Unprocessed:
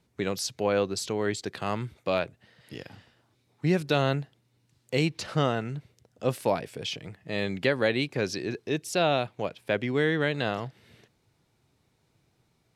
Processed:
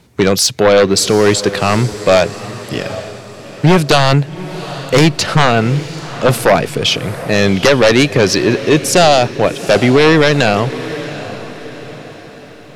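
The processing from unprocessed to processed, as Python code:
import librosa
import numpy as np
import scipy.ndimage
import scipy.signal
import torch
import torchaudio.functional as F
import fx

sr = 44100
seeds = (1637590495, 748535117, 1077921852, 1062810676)

y = fx.fold_sine(x, sr, drive_db=10, ceiling_db=-10.0)
y = fx.echo_diffused(y, sr, ms=778, feedback_pct=46, wet_db=-14)
y = y * librosa.db_to_amplitude(6.5)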